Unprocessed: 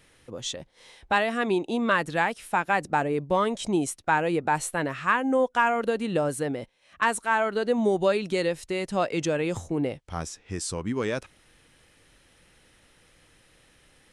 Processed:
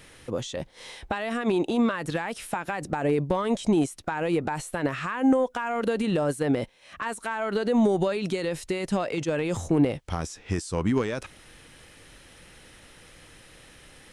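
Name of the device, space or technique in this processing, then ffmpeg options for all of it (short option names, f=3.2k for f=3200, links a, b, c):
de-esser from a sidechain: -filter_complex "[0:a]asplit=2[a][b];[b]highpass=f=4.6k:p=1,apad=whole_len=622925[c];[a][c]sidechaincompress=threshold=-46dB:ratio=6:attack=1.2:release=44,volume=8.5dB"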